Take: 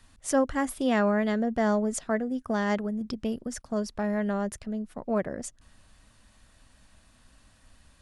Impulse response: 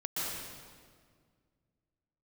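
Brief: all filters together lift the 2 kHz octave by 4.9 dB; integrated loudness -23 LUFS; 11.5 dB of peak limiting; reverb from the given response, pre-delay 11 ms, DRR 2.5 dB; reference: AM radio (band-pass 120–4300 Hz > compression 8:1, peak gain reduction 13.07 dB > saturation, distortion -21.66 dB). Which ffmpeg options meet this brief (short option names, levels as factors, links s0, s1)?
-filter_complex "[0:a]equalizer=f=2000:t=o:g=6,alimiter=limit=0.0631:level=0:latency=1,asplit=2[s0][s1];[1:a]atrim=start_sample=2205,adelay=11[s2];[s1][s2]afir=irnorm=-1:irlink=0,volume=0.422[s3];[s0][s3]amix=inputs=2:normalize=0,highpass=120,lowpass=4300,acompressor=threshold=0.0141:ratio=8,asoftclip=threshold=0.0251,volume=8.91"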